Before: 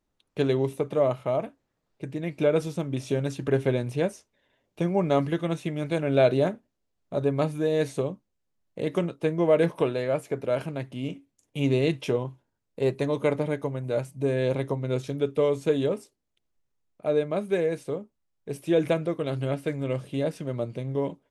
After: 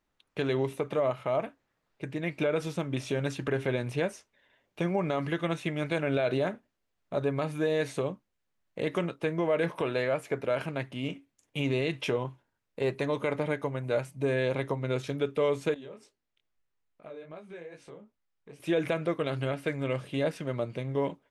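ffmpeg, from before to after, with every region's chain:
ffmpeg -i in.wav -filter_complex "[0:a]asettb=1/sr,asplit=3[link_01][link_02][link_03];[link_01]atrim=end=15.744[link_04];[link_02]atrim=start=15.74:end=18.6,asetpts=PTS-STARTPTS,afade=type=in:duration=0.004:curve=qsin,afade=type=out:start_time=2.856:duration=0.004:curve=qsin,lowpass=7900,acompressor=threshold=-43dB:ratio=3:attack=3.2:release=140:knee=1:detection=peak,flanger=delay=17.5:depth=6.6:speed=2.4[link_05];[link_03]atrim=start=18.596[link_06];[link_04][link_05]acrossfade=duration=0.004:curve1=hsin:curve2=qsin[link_07];[link_07][link_06]acrossfade=duration=0.004:curve1=qsin:curve2=hsin,equalizer=frequency=1800:width=0.53:gain=8.5,alimiter=limit=-15dB:level=0:latency=1:release=98,volume=-3dB" out.wav

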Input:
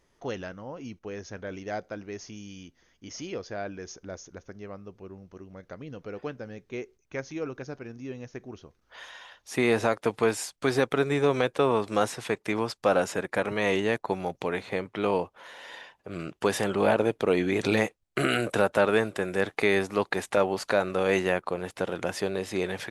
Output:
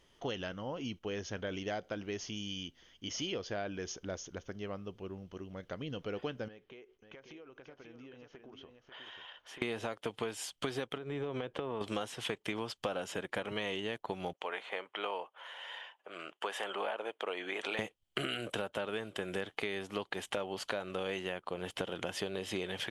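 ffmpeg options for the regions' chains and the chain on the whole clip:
ffmpeg -i in.wav -filter_complex "[0:a]asettb=1/sr,asplit=3[link_01][link_02][link_03];[link_01]atrim=end=6.484[link_04];[link_02]atrim=start=6.48:end=9.62,asetpts=PTS-STARTPTS,afade=type=in:duration=0.004:curve=qsin,afade=type=out:start_time=3.136:duration=0.004:curve=qsin,bass=frequency=250:gain=-11,treble=frequency=4000:gain=-15,acompressor=threshold=-49dB:ratio=16:attack=3.2:release=140:knee=1:detection=peak,aecho=1:1:540:0.447,atrim=end_sample=138474[link_05];[link_03]atrim=start=9.616[link_06];[link_04][link_05]acrossfade=duration=0.004:curve1=hsin:curve2=qsin[link_07];[link_07][link_06]acrossfade=duration=0.004:curve1=qsin:curve2=hsin,asettb=1/sr,asplit=3[link_08][link_09][link_10];[link_08]atrim=end=10.974[link_11];[link_09]atrim=start=10.97:end=11.81,asetpts=PTS-STARTPTS,afade=type=in:duration=0.004:curve=qsin,afade=type=out:start_time=0.836:duration=0.004:curve=qsin,lowpass=frequency=1400:poles=1,acompressor=threshold=-30dB:ratio=6:attack=3.2:release=140:knee=1:detection=peak[link_12];[link_10]atrim=start=11.806[link_13];[link_11][link_12]acrossfade=duration=0.004:curve1=hsin:curve2=qsin[link_14];[link_14][link_13]acrossfade=duration=0.004:curve1=qsin:curve2=hsin,asettb=1/sr,asplit=3[link_15][link_16][link_17];[link_15]atrim=end=14.334[link_18];[link_16]atrim=start=14.33:end=17.79,asetpts=PTS-STARTPTS,afade=type=in:duration=0.004:curve=qsin,afade=type=out:start_time=3.456:duration=0.004:curve=qsin,highpass=750,lowpass=8000,equalizer=frequency=4800:width_type=o:width=1.7:gain=-12[link_19];[link_17]atrim=start=17.786[link_20];[link_18][link_19]acrossfade=duration=0.004:curve1=hsin:curve2=qsin[link_21];[link_21][link_20]acrossfade=duration=0.004:curve1=qsin:curve2=hsin,equalizer=frequency=3100:width_type=o:width=0.31:gain=14,acompressor=threshold=-33dB:ratio=12" out.wav

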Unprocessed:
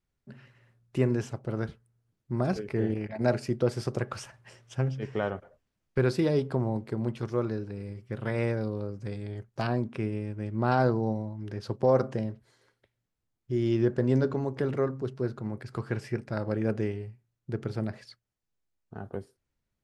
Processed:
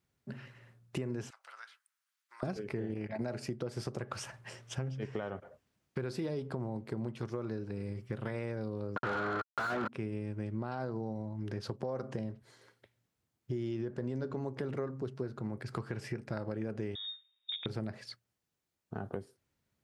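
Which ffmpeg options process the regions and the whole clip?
ffmpeg -i in.wav -filter_complex "[0:a]asettb=1/sr,asplit=3[link_01][link_02][link_03];[link_01]atrim=end=1.304[link_04];[link_02]atrim=start=1.3:end=2.43,asetpts=PTS-STARTPTS,afade=type=in:duration=0.004:curve=qsin,afade=type=out:start_time=1.126:duration=0.004:curve=qsin,highpass=frequency=1200:width=0.5412,highpass=frequency=1200:width=1.3066,acompressor=threshold=-57dB:ratio=2:attack=3.2:release=140:knee=1:detection=peak[link_05];[link_03]atrim=start=2.426[link_06];[link_04][link_05]acrossfade=duration=0.004:curve1=hsin:curve2=qsin[link_07];[link_07][link_06]acrossfade=duration=0.004:curve1=qsin:curve2=hsin,asettb=1/sr,asplit=3[link_08][link_09][link_10];[link_08]atrim=end=8.964[link_11];[link_09]atrim=start=8.96:end=9.88,asetpts=PTS-STARTPTS,afade=type=in:duration=0.004:curve=qsin,afade=type=out:start_time=0.916:duration=0.004:curve=qsin,aeval=exprs='val(0)*gte(abs(val(0)),0.0112)':channel_layout=same,lowpass=frequency=1400:width_type=q:width=13,asplit=2[link_12][link_13];[link_13]highpass=frequency=720:poles=1,volume=36dB,asoftclip=type=tanh:threshold=-10.5dB[link_14];[link_12][link_14]amix=inputs=2:normalize=0,lowpass=frequency=1100:poles=1,volume=-6dB[link_15];[link_10]atrim=start=9.876[link_16];[link_11][link_15]acrossfade=duration=0.004:curve1=hsin:curve2=qsin[link_17];[link_17][link_16]acrossfade=duration=0.004:curve1=qsin:curve2=hsin,asettb=1/sr,asplit=3[link_18][link_19][link_20];[link_18]atrim=end=16.954[link_21];[link_19]atrim=start=16.95:end=17.66,asetpts=PTS-STARTPTS,afade=type=in:duration=0.004:curve=qsin,afade=type=out:start_time=0.706:duration=0.004:curve=qsin,lowpass=frequency=3200:width_type=q:width=0.5098,lowpass=frequency=3200:width_type=q:width=0.6013,lowpass=frequency=3200:width_type=q:width=0.9,lowpass=frequency=3200:width_type=q:width=2.563,afreqshift=-3800,acompressor=threshold=-39dB:ratio=2.5:attack=3.2:release=140:knee=1:detection=peak[link_22];[link_20]atrim=start=17.656[link_23];[link_21][link_22]acrossfade=duration=0.004:curve1=hsin:curve2=qsin[link_24];[link_24][link_23]acrossfade=duration=0.004:curve1=qsin:curve2=hsin,alimiter=limit=-20dB:level=0:latency=1:release=101,highpass=82,acompressor=threshold=-40dB:ratio=4,volume=4.5dB" out.wav

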